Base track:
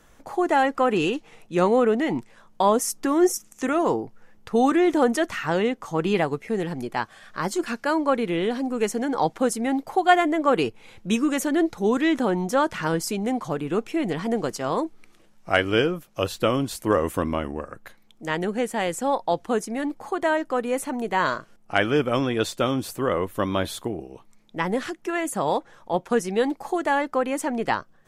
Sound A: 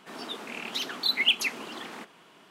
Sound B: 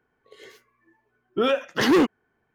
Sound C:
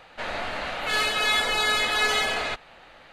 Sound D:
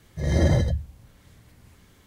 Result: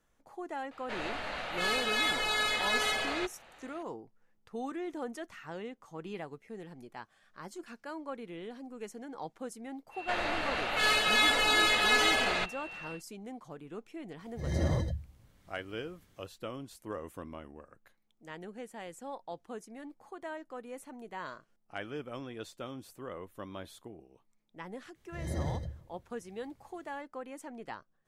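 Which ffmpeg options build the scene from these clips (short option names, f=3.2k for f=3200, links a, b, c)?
-filter_complex "[3:a]asplit=2[a][b];[4:a]asplit=2[c][d];[0:a]volume=-19dB[e];[b]aeval=exprs='val(0)+0.00891*sin(2*PI*2700*n/s)':c=same[f];[d]asplit=2[g][h];[h]adelay=158,lowpass=f=2k:p=1,volume=-18.5dB,asplit=2[i][j];[j]adelay=158,lowpass=f=2k:p=1,volume=0.39,asplit=2[k][l];[l]adelay=158,lowpass=f=2k:p=1,volume=0.39[m];[g][i][k][m]amix=inputs=4:normalize=0[n];[a]atrim=end=3.12,asetpts=PTS-STARTPTS,volume=-7dB,afade=t=in:d=0.004:c=hsin,afade=t=out:st=3.116:d=0.004:c=hsin,adelay=710[o];[f]atrim=end=3.12,asetpts=PTS-STARTPTS,volume=-2.5dB,afade=t=in:d=0.1,afade=t=out:st=3.02:d=0.1,adelay=9900[p];[c]atrim=end=2.06,asetpts=PTS-STARTPTS,volume=-10dB,afade=t=in:d=0.004:c=hsin,afade=t=out:st=2.056:d=0.004:c=hsin,adelay=14200[q];[n]atrim=end=2.06,asetpts=PTS-STARTPTS,volume=-15dB,afade=t=in:d=0.004:c=hsin,afade=t=out:st=2.056:d=0.004:c=hsin,adelay=24950[r];[e][o][p][q][r]amix=inputs=5:normalize=0"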